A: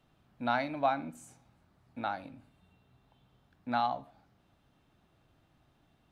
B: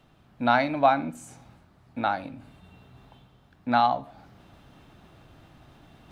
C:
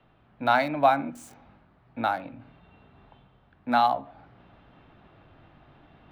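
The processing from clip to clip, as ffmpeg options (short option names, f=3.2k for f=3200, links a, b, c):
-af "highshelf=f=7.3k:g=-4,areverse,acompressor=mode=upward:threshold=-53dB:ratio=2.5,areverse,volume=9dB"
-filter_complex "[0:a]acrossover=split=320|700|3500[a][b][c][d];[a]flanger=delay=17:depth=4.4:speed=0.45[e];[d]aeval=exprs='val(0)*gte(abs(val(0)),0.00447)':c=same[f];[e][b][c][f]amix=inputs=4:normalize=0"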